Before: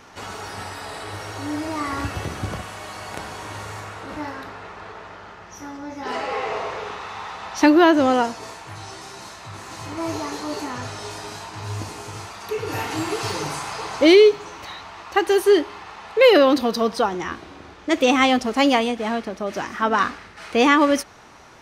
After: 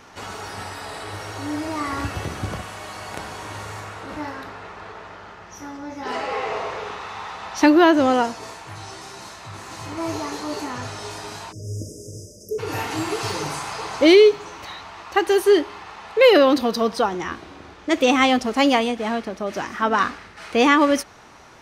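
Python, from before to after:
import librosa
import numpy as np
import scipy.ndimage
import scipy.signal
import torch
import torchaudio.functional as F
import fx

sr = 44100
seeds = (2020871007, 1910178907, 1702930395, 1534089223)

y = fx.brickwall_bandstop(x, sr, low_hz=640.0, high_hz=4900.0, at=(11.51, 12.58), fade=0.02)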